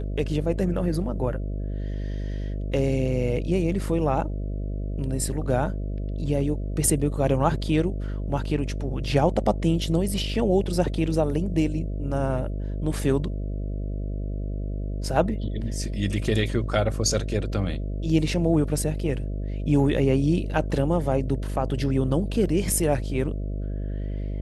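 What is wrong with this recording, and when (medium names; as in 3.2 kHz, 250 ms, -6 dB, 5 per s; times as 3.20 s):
buzz 50 Hz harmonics 13 -29 dBFS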